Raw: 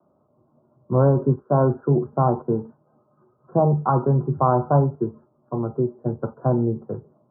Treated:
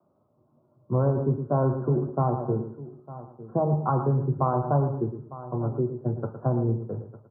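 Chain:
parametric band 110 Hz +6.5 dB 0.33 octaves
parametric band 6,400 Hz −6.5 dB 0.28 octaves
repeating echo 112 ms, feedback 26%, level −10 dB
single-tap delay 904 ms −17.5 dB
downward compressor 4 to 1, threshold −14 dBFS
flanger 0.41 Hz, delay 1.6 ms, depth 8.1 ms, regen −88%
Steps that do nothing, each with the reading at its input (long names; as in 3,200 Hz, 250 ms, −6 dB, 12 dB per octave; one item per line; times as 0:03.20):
parametric band 6,400 Hz: nothing at its input above 1,300 Hz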